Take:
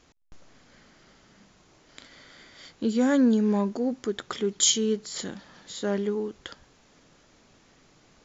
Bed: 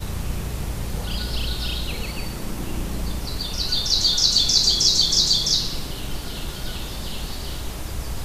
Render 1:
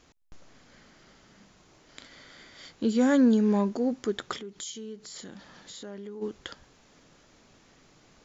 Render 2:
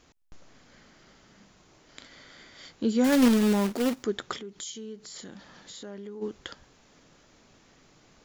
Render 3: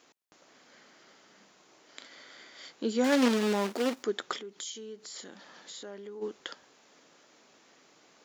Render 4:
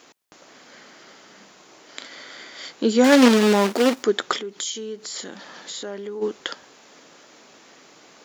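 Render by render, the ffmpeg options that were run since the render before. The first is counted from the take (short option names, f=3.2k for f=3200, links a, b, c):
-filter_complex "[0:a]asplit=3[a][b][c];[a]afade=t=out:st=4.37:d=0.02[d];[b]acompressor=threshold=-42dB:ratio=3:attack=3.2:release=140:knee=1:detection=peak,afade=t=in:st=4.37:d=0.02,afade=t=out:st=6.21:d=0.02[e];[c]afade=t=in:st=6.21:d=0.02[f];[d][e][f]amix=inputs=3:normalize=0"
-filter_complex "[0:a]asettb=1/sr,asplit=3[a][b][c];[a]atrim=end=3.044[d];[b]atrim=start=3.04:end=4.04,asetpts=PTS-STARTPTS,afade=t=in:d=0.004:c=qsin,afade=t=out:st=0.996:d=0.004:c=qsin,acrusher=bits=2:mode=log:mix=0:aa=0.000001[e];[c]atrim=start=4.036[f];[d][e]acrossfade=d=0.004:c1=hsin:c2=qsin[g];[g][f]acrossfade=d=0.004:c1=qsin:c2=hsin"
-filter_complex "[0:a]acrossover=split=7500[a][b];[b]acompressor=threshold=-49dB:ratio=4:attack=1:release=60[c];[a][c]amix=inputs=2:normalize=0,highpass=320"
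-af "volume=11dB"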